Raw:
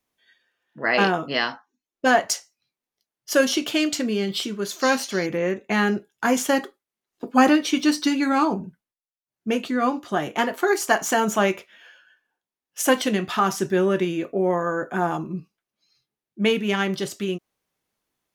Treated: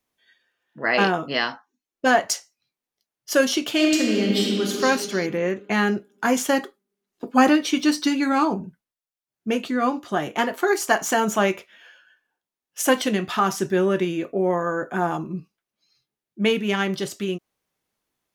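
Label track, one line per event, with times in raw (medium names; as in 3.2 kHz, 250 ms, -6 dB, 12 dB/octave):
3.710000	4.710000	reverb throw, RT60 2.4 s, DRR -1 dB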